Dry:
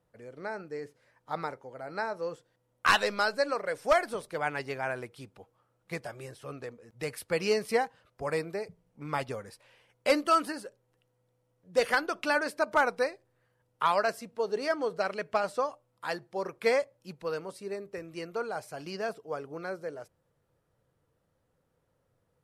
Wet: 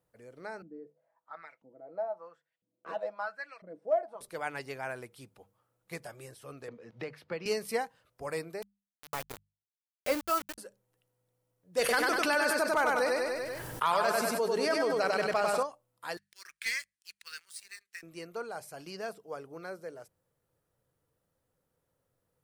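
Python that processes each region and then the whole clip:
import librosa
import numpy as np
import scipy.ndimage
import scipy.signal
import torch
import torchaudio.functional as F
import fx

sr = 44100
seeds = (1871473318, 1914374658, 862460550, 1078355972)

y = fx.chain(x, sr, fx.comb(ms=6.1, depth=0.52),
    fx.filter_lfo_bandpass(shape='saw_up', hz=1.0, low_hz=220.0, high_hz=3000.0, q=3.7),
    fx.small_body(hz=(200.0, 630.0), ring_ms=25, db=9), at=(0.62, 4.21))
y = fx.chain(y, sr, fx.highpass(hz=110.0, slope=12),
    fx.air_absorb(metres=260.0),
    fx.band_squash(depth_pct=70), at=(6.68, 7.46))
y = fx.chain(y, sr, fx.lowpass(hz=2400.0, slope=6),
    fx.sample_gate(floor_db=-31.0), at=(8.62, 10.58))
y = fx.chain(y, sr, fx.echo_feedback(ms=97, feedback_pct=42, wet_db=-4.0),
    fx.env_flatten(amount_pct=70), at=(11.79, 15.63))
y = fx.chain(y, sr, fx.ellip_bandpass(low_hz=1700.0, high_hz=9700.0, order=3, stop_db=40),
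    fx.leveller(passes=2), at=(16.17, 18.03))
y = fx.high_shelf(y, sr, hz=8300.0, db=12.0)
y = fx.hum_notches(y, sr, base_hz=50, count=4)
y = y * librosa.db_to_amplitude(-5.0)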